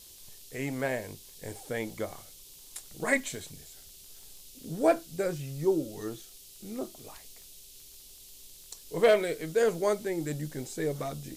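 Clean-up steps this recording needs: clip repair -13.5 dBFS; de-click; noise print and reduce 25 dB

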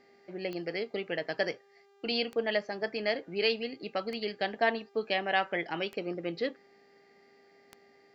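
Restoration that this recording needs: de-click; de-hum 399 Hz, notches 19

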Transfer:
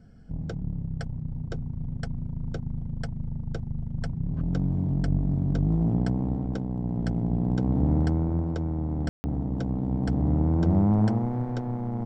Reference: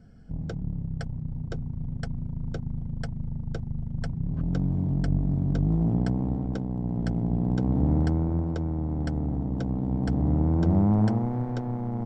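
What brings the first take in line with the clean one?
room tone fill 9.09–9.24 s

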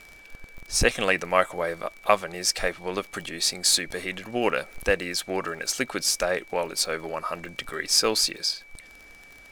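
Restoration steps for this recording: de-click; band-stop 2.3 kHz, Q 30

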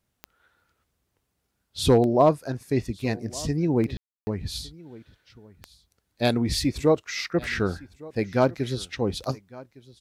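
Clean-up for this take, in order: clip repair -8.5 dBFS; de-click; room tone fill 3.97–4.27 s; inverse comb 1159 ms -21.5 dB

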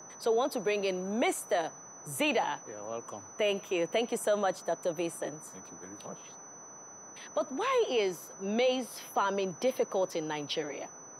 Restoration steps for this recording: band-stop 6 kHz, Q 30; noise print and reduce 27 dB

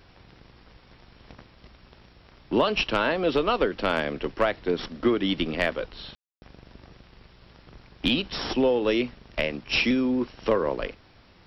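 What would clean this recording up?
clip repair -11.5 dBFS; room tone fill 6.15–6.42 s

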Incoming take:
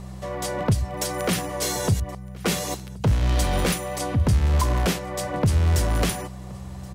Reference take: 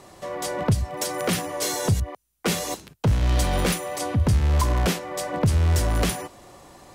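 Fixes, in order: de-hum 63.8 Hz, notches 3; inverse comb 1074 ms -23.5 dB

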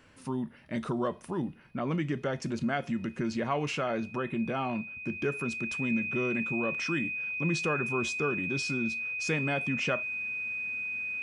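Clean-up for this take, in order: band-stop 2.5 kHz, Q 30

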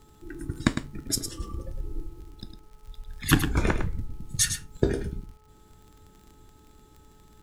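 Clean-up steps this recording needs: de-click; de-hum 429.1 Hz, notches 3; inverse comb 106 ms -8.5 dB

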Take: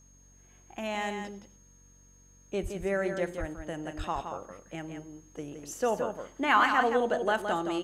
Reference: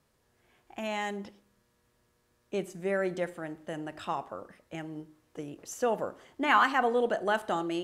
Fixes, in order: de-hum 46.8 Hz, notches 6; band-stop 6.5 kHz, Q 30; 2.62–2.74 s: high-pass 140 Hz 24 dB/octave; 3.39–3.51 s: high-pass 140 Hz 24 dB/octave; 3.97–4.09 s: high-pass 140 Hz 24 dB/octave; inverse comb 169 ms -7 dB

